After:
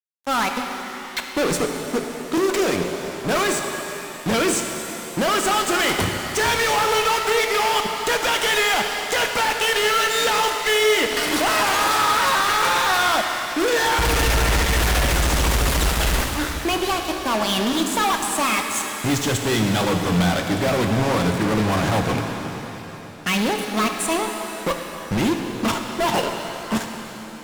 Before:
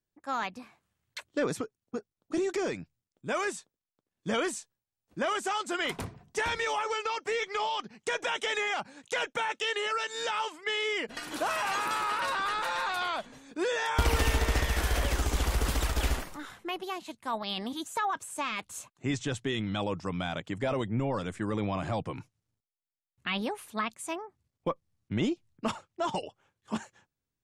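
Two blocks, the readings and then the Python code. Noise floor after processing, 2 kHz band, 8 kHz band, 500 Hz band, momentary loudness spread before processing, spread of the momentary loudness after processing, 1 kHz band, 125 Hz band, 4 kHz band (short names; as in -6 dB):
-34 dBFS, +12.0 dB, +15.5 dB, +11.5 dB, 9 LU, 9 LU, +11.5 dB, +10.0 dB, +13.0 dB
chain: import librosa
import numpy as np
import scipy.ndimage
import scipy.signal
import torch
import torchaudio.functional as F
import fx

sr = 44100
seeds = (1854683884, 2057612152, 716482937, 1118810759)

y = fx.fuzz(x, sr, gain_db=41.0, gate_db=-44.0)
y = fx.rev_shimmer(y, sr, seeds[0], rt60_s=3.3, semitones=7, shimmer_db=-8, drr_db=3.5)
y = y * librosa.db_to_amplitude(-5.5)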